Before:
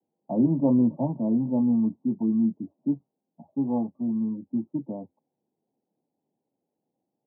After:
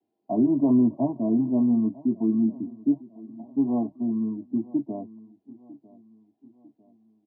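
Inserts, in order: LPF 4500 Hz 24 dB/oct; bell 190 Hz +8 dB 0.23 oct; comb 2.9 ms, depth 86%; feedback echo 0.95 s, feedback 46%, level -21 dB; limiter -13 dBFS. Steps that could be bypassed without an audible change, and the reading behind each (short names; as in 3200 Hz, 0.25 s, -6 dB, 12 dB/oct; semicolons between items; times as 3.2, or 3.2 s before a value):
LPF 4500 Hz: input band ends at 850 Hz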